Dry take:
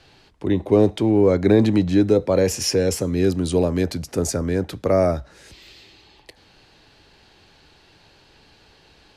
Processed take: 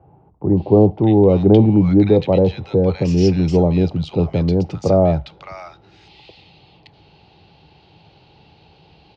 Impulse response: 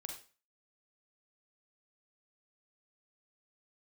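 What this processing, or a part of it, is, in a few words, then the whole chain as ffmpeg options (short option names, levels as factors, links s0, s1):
guitar cabinet: -filter_complex "[0:a]highpass=86,equalizer=f=160:t=q:w=4:g=5,equalizer=f=250:t=q:w=4:g=-6,equalizer=f=810:t=q:w=4:g=9,equalizer=f=1700:t=q:w=4:g=-10,equalizer=f=2800:t=q:w=4:g=3,lowpass=f=4400:w=0.5412,lowpass=f=4400:w=1.3066,lowshelf=f=290:g=10,acrossover=split=1200[s0][s1];[s1]adelay=570[s2];[s0][s2]amix=inputs=2:normalize=0"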